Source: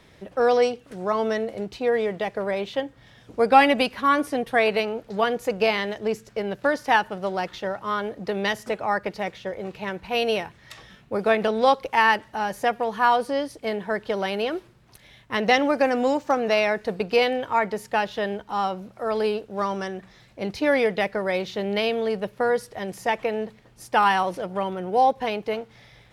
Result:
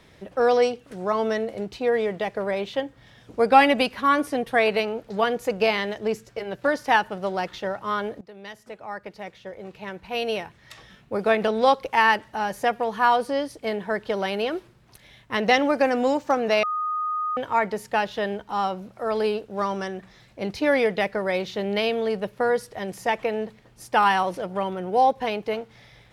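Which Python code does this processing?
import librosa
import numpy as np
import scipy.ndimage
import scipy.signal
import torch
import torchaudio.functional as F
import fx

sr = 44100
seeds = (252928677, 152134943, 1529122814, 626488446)

y = fx.notch_comb(x, sr, f0_hz=210.0, at=(6.25, 6.68))
y = fx.edit(y, sr, fx.fade_in_from(start_s=8.21, length_s=3.19, floor_db=-20.0),
    fx.bleep(start_s=16.63, length_s=0.74, hz=1240.0, db=-23.5), tone=tone)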